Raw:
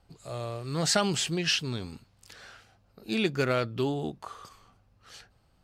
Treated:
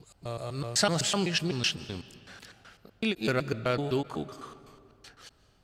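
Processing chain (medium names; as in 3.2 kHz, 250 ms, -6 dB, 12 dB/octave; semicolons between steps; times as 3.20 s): slices played last to first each 126 ms, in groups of 2; algorithmic reverb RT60 2.4 s, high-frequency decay 0.7×, pre-delay 110 ms, DRR 16.5 dB; endings held to a fixed fall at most 530 dB/s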